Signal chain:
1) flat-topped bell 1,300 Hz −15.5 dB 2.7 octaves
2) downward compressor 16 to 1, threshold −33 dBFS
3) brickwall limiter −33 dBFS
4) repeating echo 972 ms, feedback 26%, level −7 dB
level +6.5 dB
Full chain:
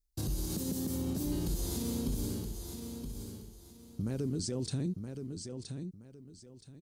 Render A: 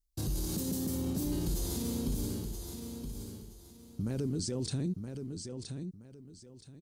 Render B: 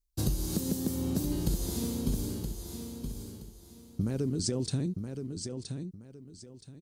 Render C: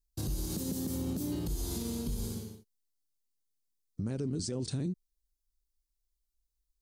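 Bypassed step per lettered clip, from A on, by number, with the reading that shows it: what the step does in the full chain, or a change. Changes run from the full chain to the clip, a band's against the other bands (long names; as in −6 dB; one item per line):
2, average gain reduction 6.0 dB
3, average gain reduction 2.5 dB
4, change in momentary loudness spread −10 LU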